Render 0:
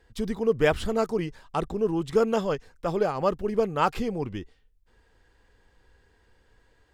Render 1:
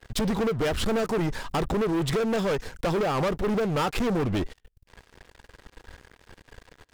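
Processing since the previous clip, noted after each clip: compressor 16:1, threshold -29 dBFS, peak gain reduction 13.5 dB; sample leveller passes 5; gain -1.5 dB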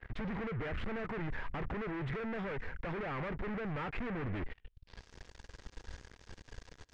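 hard clip -35 dBFS, distortion -9 dB; low shelf 190 Hz +7.5 dB; low-pass sweep 2000 Hz -> 6200 Hz, 4.48–5.07; gain -5.5 dB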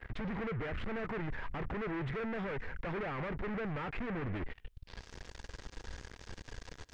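limiter -40.5 dBFS, peak gain reduction 10 dB; gain +7 dB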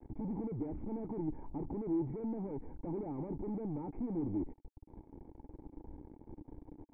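bit-crush 9-bit; vocal tract filter u; gain +10 dB

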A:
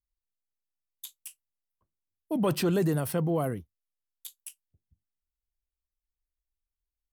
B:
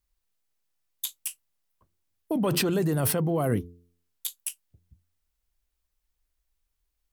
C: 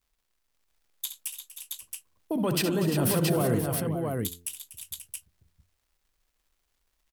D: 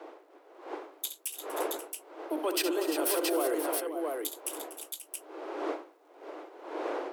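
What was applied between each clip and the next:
de-hum 86.89 Hz, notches 5; in parallel at +2.5 dB: negative-ratio compressor -33 dBFS, ratio -0.5; on the sum: gain -1 dB
crackle 200/s -60 dBFS; tapped delay 67/242/306/348/533/673 ms -9.5/-14.5/-17.5/-9/-11/-3.5 dB; gain -2 dB
wind noise 580 Hz -37 dBFS; steep high-pass 300 Hz 96 dB/oct; notch 1800 Hz, Q 26; gain -1.5 dB

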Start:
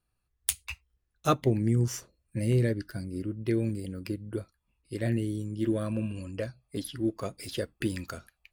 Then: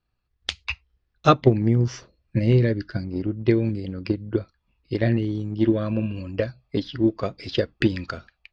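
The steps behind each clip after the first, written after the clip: steep low-pass 5200 Hz 36 dB/oct; transient shaper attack +6 dB, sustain +1 dB; AGC gain up to 4 dB; gain +1.5 dB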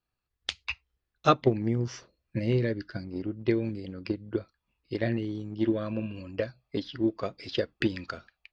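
low shelf 170 Hz -8 dB; gain -4.5 dB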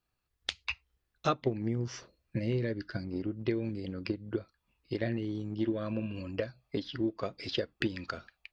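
compressor 2:1, threshold -36 dBFS, peak gain reduction 11.5 dB; gain +2.5 dB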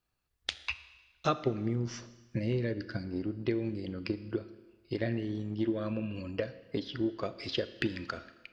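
Schroeder reverb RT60 1.3 s, combs from 26 ms, DRR 13.5 dB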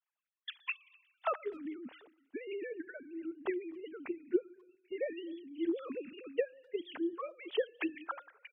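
sine-wave speech; speakerphone echo 0.25 s, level -29 dB; harmonic-percussive split harmonic -9 dB; gain +1.5 dB

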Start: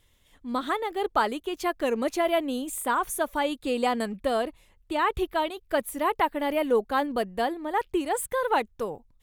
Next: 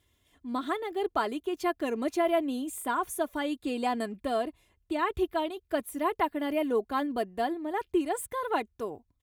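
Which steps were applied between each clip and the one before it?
HPF 77 Hz 12 dB/oct; low shelf 410 Hz +6 dB; comb 2.9 ms, depth 48%; gain -6.5 dB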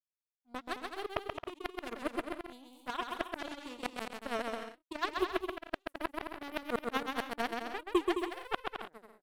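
power-law curve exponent 3; flipped gate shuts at -23 dBFS, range -36 dB; bouncing-ball echo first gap 0.13 s, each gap 0.65×, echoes 5; gain +7.5 dB

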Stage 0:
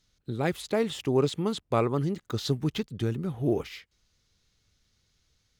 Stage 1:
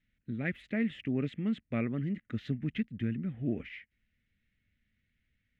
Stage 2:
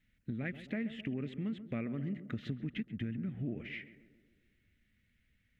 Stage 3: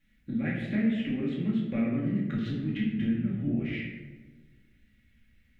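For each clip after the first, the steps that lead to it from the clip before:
EQ curve 160 Hz 0 dB, 230 Hz +8 dB, 400 Hz -9 dB, 610 Hz -5 dB, 960 Hz -20 dB, 1900 Hz +9 dB, 2800 Hz +1 dB, 4600 Hz -21 dB, 12000 Hz -26 dB; gain -6 dB
compressor 5:1, threshold -39 dBFS, peak gain reduction 11.5 dB; tape echo 0.133 s, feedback 67%, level -10.5 dB, low-pass 1000 Hz; gain +3.5 dB
reverb RT60 0.95 s, pre-delay 4 ms, DRR -5.5 dB

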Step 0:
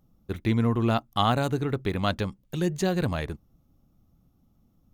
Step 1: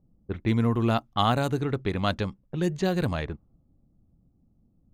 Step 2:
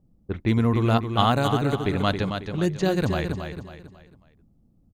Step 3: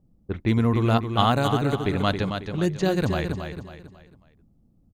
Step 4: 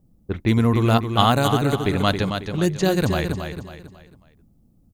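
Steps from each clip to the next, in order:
low-pass opened by the level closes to 550 Hz, open at -21 dBFS
feedback echo 0.273 s, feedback 37%, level -7 dB; gain +2.5 dB
nothing audible
high shelf 6700 Hz +10 dB; gain +3 dB

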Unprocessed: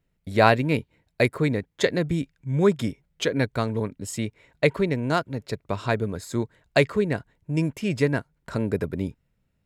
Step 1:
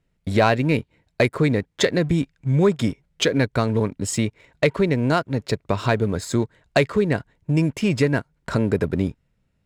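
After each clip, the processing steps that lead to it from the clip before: LPF 9600 Hz 12 dB/oct; compressor 2:1, threshold -27 dBFS, peak gain reduction 9 dB; sample leveller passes 1; gain +5 dB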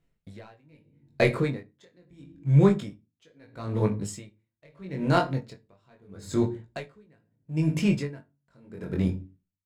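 shoebox room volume 310 m³, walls furnished, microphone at 0.75 m; chorus 0.28 Hz, delay 18.5 ms, depth 3.9 ms; dB-linear tremolo 0.77 Hz, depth 37 dB

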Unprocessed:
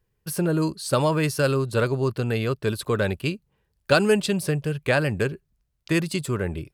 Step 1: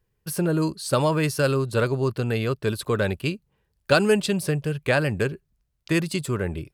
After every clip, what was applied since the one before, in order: nothing audible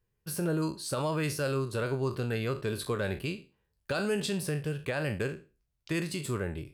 spectral trails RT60 0.31 s; limiter -15 dBFS, peak gain reduction 10.5 dB; gain -7 dB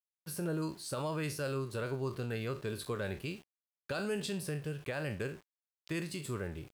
sample gate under -48 dBFS; gain -5.5 dB

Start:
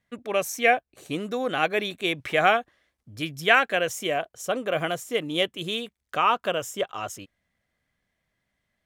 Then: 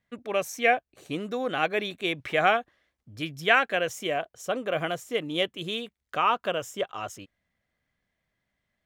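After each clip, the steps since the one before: bell 11000 Hz -5.5 dB 1.3 oct; gain -2 dB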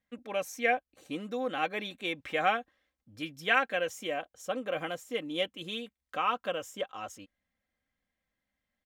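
comb 3.8 ms, depth 53%; gain -6.5 dB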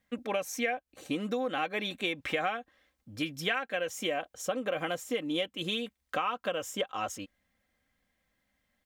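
compressor 8:1, threshold -36 dBFS, peak gain reduction 16 dB; gain +8 dB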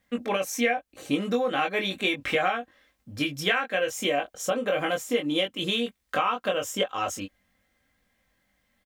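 doubler 21 ms -3.5 dB; gain +4.5 dB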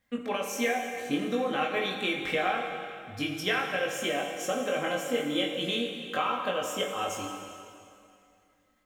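plate-style reverb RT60 2.5 s, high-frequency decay 0.9×, DRR 2 dB; gain -5 dB

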